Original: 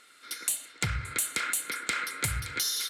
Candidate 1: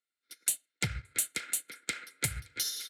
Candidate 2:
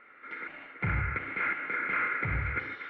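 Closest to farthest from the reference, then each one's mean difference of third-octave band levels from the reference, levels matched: 1, 2; 9.0 dB, 14.0 dB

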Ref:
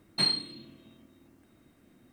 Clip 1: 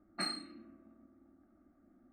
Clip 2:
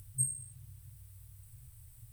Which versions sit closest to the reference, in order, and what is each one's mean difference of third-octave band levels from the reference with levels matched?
1, 2; 4.5 dB, 13.0 dB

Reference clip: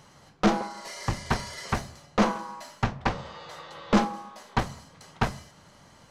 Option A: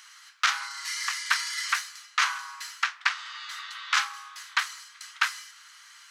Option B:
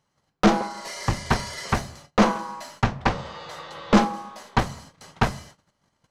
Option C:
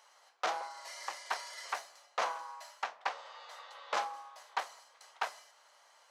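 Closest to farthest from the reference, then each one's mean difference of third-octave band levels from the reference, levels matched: B, C, A; 2.5 dB, 9.0 dB, 15.5 dB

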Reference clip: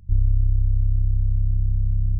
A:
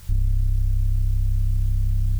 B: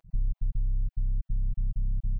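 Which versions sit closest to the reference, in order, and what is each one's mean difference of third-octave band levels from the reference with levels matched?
B, A; 2.5 dB, 7.5 dB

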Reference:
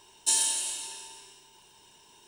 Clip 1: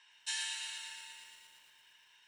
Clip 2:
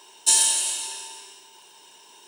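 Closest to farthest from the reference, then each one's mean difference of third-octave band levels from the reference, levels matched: 2, 1; 1.5 dB, 7.0 dB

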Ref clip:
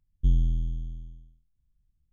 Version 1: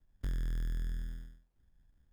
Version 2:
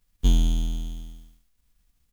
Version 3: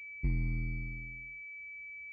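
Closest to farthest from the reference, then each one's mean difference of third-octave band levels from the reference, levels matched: 3, 2, 1; 5.5 dB, 12.5 dB, 16.5 dB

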